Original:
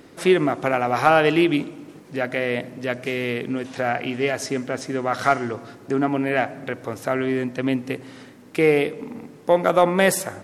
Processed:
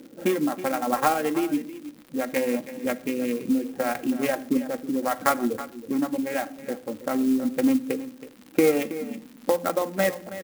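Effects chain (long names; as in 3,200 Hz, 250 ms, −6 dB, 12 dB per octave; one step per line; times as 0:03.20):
adaptive Wiener filter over 41 samples
high-pass filter 130 Hz 24 dB per octave
mains-hum notches 60/120/180 Hz
reverb reduction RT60 1.3 s
low-pass filter 1,900 Hz 6 dB per octave
comb filter 3.7 ms, depth 69%
downward compressor 12 to 1, threshold −21 dBFS, peak gain reduction 12.5 dB
sample-and-hold tremolo
surface crackle 230 per second −42 dBFS
single-tap delay 323 ms −14 dB
convolution reverb RT60 0.50 s, pre-delay 9 ms, DRR 13 dB
converter with an unsteady clock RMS 0.041 ms
level +5.5 dB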